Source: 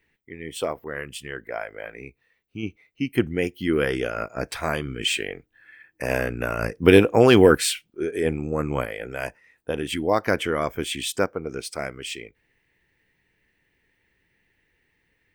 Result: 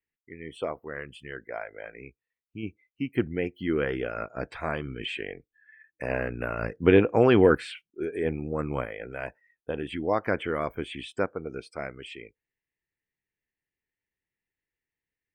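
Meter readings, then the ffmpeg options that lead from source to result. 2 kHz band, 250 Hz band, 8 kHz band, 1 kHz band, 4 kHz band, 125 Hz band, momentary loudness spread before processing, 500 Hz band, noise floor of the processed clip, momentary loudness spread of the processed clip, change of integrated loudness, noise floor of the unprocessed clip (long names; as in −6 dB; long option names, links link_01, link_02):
−6.0 dB, −4.5 dB, below −20 dB, −4.5 dB, −11.5 dB, −4.5 dB, 19 LU, −4.5 dB, below −85 dBFS, 21 LU, −4.5 dB, −71 dBFS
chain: -filter_complex "[0:a]acrossover=split=2800[link_01][link_02];[link_02]acompressor=threshold=-44dB:ratio=4:attack=1:release=60[link_03];[link_01][link_03]amix=inputs=2:normalize=0,afftdn=noise_reduction=19:noise_floor=-46,volume=-4.5dB"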